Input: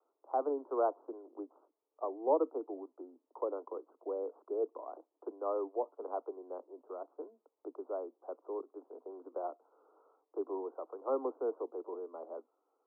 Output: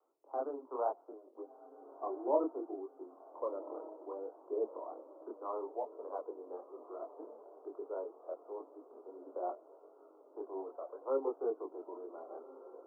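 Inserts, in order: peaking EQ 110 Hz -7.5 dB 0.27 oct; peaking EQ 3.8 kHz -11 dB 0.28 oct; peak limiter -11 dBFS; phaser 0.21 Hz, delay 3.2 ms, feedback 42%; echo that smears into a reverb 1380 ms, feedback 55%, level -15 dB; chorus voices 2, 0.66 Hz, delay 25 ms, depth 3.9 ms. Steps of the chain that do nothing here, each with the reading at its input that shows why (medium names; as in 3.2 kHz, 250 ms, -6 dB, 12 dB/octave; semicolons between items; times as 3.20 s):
peaking EQ 110 Hz: input has nothing below 230 Hz; peaking EQ 3.8 kHz: input has nothing above 1.4 kHz; peak limiter -11 dBFS: peak at its input -17.5 dBFS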